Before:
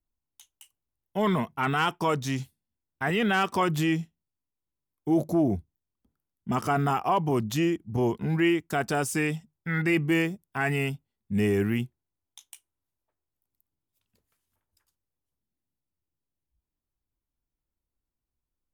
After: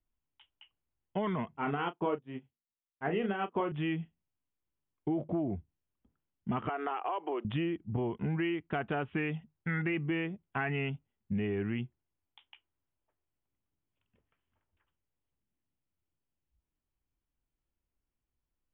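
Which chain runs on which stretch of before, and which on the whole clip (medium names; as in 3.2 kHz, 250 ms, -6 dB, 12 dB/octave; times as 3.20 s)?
1.57–3.72 s: peaking EQ 410 Hz +11 dB 2.3 oct + doubling 35 ms -6 dB + upward expansion 2.5:1, over -31 dBFS
6.69–7.45 s: steep high-pass 330 Hz + compression 2.5:1, threshold -30 dBFS
whole clip: steep low-pass 3.3 kHz 96 dB/octave; compression, threshold -30 dBFS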